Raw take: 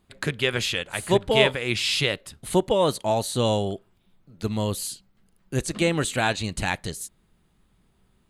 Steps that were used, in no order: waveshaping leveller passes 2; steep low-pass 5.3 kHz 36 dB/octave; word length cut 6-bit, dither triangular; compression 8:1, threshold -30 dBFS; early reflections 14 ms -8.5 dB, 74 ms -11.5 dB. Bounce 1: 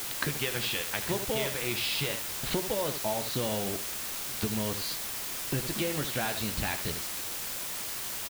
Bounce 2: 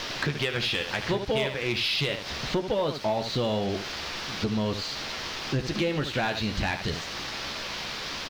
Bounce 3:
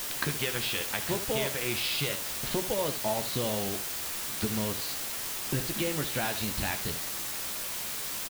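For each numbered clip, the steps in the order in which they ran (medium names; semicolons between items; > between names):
early reflections > waveshaping leveller > steep low-pass > compression > word length cut; word length cut > early reflections > compression > steep low-pass > waveshaping leveller; waveshaping leveller > compression > steep low-pass > word length cut > early reflections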